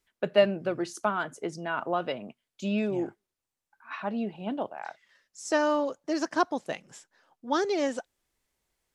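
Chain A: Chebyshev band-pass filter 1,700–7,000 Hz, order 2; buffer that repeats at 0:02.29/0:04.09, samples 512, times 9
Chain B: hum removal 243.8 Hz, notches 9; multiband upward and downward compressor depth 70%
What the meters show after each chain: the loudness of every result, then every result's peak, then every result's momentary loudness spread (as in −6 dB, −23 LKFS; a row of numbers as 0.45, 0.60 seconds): −40.0, −31.0 LKFS; −17.5, −12.5 dBFS; 15, 13 LU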